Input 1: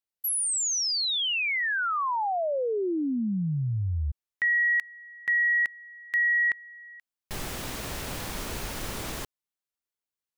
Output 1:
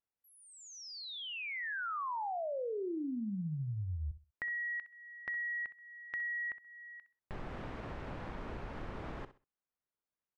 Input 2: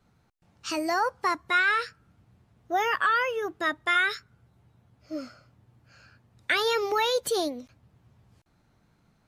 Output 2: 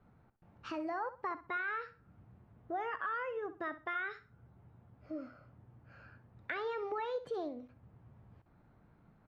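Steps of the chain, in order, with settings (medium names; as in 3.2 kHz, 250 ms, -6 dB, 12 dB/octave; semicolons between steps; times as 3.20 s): low-pass 1.6 kHz 12 dB/octave; compression 2:1, threshold -47 dBFS; on a send: feedback delay 64 ms, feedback 25%, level -14 dB; on the sum: trim +1 dB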